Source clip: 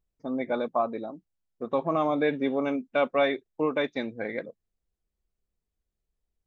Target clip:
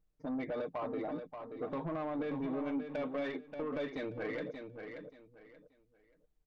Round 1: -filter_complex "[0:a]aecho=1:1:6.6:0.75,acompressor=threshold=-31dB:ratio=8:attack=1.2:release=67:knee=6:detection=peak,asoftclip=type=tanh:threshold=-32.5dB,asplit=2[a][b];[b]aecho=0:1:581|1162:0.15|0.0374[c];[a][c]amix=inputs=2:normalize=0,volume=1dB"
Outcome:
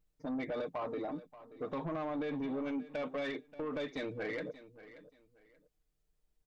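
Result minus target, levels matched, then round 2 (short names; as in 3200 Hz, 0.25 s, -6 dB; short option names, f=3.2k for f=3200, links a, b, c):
echo-to-direct -9 dB; 4000 Hz band +4.0 dB
-filter_complex "[0:a]aecho=1:1:6.6:0.75,acompressor=threshold=-31dB:ratio=8:attack=1.2:release=67:knee=6:detection=peak,highshelf=f=3.1k:g=-9.5,asoftclip=type=tanh:threshold=-32.5dB,asplit=2[a][b];[b]aecho=0:1:581|1162|1743:0.422|0.105|0.0264[c];[a][c]amix=inputs=2:normalize=0,volume=1dB"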